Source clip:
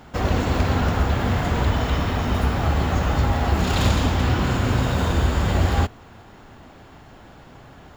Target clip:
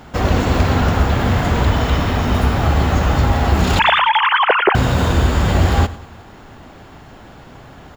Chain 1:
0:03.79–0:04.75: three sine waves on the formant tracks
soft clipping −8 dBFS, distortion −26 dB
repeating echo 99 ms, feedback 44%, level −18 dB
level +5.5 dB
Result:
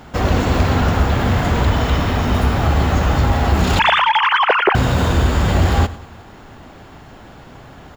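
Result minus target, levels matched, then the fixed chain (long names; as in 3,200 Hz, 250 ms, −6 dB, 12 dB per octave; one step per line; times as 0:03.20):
soft clipping: distortion +12 dB
0:03.79–0:04.75: three sine waves on the formant tracks
soft clipping −1.5 dBFS, distortion −38 dB
repeating echo 99 ms, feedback 44%, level −18 dB
level +5.5 dB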